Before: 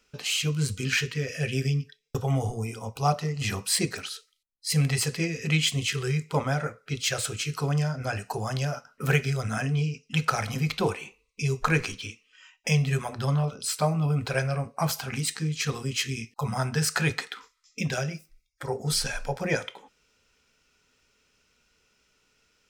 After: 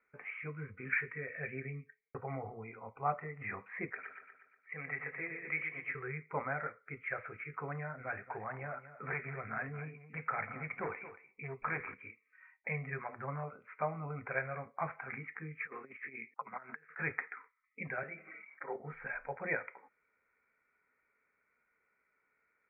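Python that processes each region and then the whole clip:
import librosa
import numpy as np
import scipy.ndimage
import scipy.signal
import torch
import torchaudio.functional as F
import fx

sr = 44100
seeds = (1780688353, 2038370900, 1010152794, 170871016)

y = fx.chain(x, sr, fx.highpass(hz=510.0, slope=6),
    fx.echo_feedback(ms=120, feedback_pct=54, wet_db=-6.5), at=(3.9, 5.95))
y = fx.chain(y, sr, fx.clip_hard(threshold_db=-23.5),
    fx.echo_single(ms=226, db=-13.0), at=(7.95, 11.94))
y = fx.chain(y, sr, fx.peak_eq(hz=760.0, db=-7.0, octaves=0.84),
    fx.over_compress(threshold_db=-33.0, ratio=-0.5),
    fx.bandpass_edges(low_hz=300.0, high_hz=5800.0), at=(15.66, 16.99))
y = fx.chain(y, sr, fx.highpass(hz=200.0, slope=24),
    fx.sustainer(db_per_s=25.0), at=(18.03, 18.76))
y = scipy.signal.sosfilt(scipy.signal.cheby1(8, 1.0, 2300.0, 'lowpass', fs=sr, output='sos'), y)
y = fx.tilt_eq(y, sr, slope=4.0)
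y = F.gain(torch.from_numpy(y), -6.5).numpy()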